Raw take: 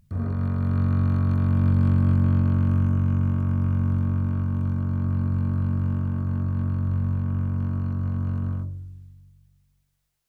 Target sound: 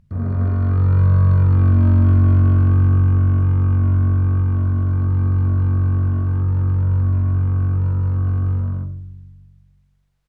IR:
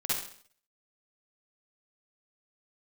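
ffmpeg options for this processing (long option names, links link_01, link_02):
-filter_complex "[0:a]aemphasis=mode=reproduction:type=75kf,aecho=1:1:96.21|212.8:0.316|0.891,asplit=2[link_01][link_02];[1:a]atrim=start_sample=2205[link_03];[link_02][link_03]afir=irnorm=-1:irlink=0,volume=-21dB[link_04];[link_01][link_04]amix=inputs=2:normalize=0,volume=3dB"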